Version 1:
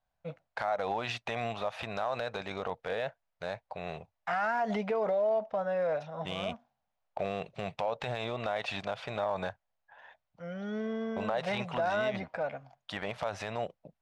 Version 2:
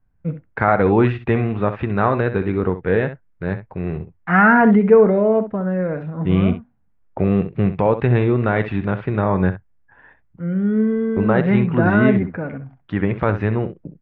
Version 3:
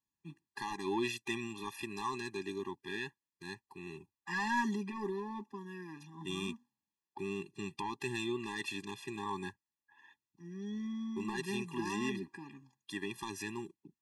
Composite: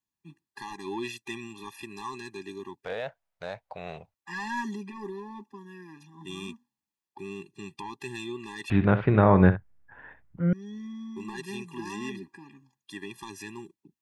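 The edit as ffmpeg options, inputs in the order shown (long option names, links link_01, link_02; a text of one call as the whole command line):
ffmpeg -i take0.wav -i take1.wav -i take2.wav -filter_complex "[2:a]asplit=3[link_01][link_02][link_03];[link_01]atrim=end=2.852[link_04];[0:a]atrim=start=2.848:end=4.142[link_05];[link_02]atrim=start=4.138:end=8.702[link_06];[1:a]atrim=start=8.698:end=10.532[link_07];[link_03]atrim=start=10.528[link_08];[link_04][link_05]acrossfade=duration=0.004:curve1=hsin:curve2=hsin[link_09];[link_09][link_06]acrossfade=duration=0.004:curve1=hsin:curve2=hsin[link_10];[link_10][link_07]acrossfade=duration=0.004:curve1=hsin:curve2=hsin[link_11];[link_11][link_08]acrossfade=duration=0.004:curve1=hsin:curve2=hsin" out.wav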